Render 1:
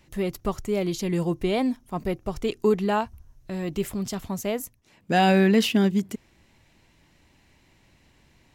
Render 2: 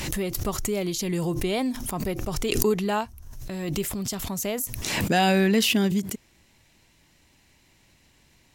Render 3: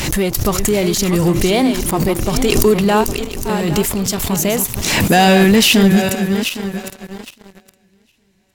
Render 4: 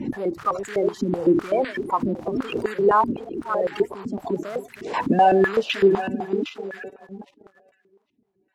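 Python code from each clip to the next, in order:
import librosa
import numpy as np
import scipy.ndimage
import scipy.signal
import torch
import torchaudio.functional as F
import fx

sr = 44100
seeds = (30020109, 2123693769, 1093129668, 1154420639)

y1 = fx.peak_eq(x, sr, hz=14000.0, db=9.5, octaves=2.3)
y1 = fx.pre_swell(y1, sr, db_per_s=33.0)
y1 = y1 * 10.0 ** (-2.5 / 20.0)
y2 = fx.reverse_delay_fb(y1, sr, ms=406, feedback_pct=54, wet_db=-8.5)
y2 = fx.leveller(y2, sr, passes=3)
y3 = fx.spec_quant(y2, sr, step_db=30)
y3 = fx.filter_held_bandpass(y3, sr, hz=7.9, low_hz=250.0, high_hz=1700.0)
y3 = y3 * 10.0 ** (3.0 / 20.0)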